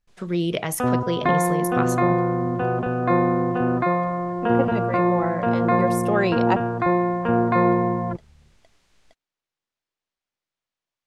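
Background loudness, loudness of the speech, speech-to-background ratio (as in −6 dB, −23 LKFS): −22.0 LKFS, −27.0 LKFS, −5.0 dB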